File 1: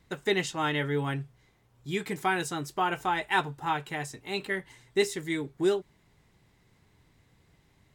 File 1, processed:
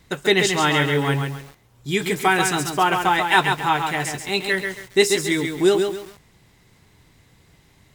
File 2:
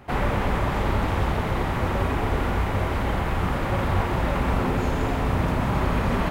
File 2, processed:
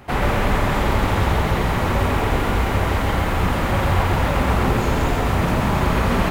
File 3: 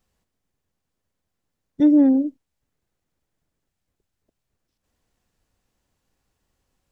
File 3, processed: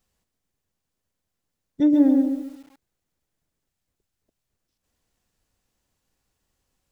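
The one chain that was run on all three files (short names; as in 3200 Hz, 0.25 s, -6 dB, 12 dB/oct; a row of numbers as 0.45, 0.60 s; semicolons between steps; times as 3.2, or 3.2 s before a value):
high shelf 3000 Hz +5 dB; lo-fi delay 0.136 s, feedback 35%, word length 8-bit, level -5 dB; match loudness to -20 LUFS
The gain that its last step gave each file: +8.5, +3.5, -3.0 dB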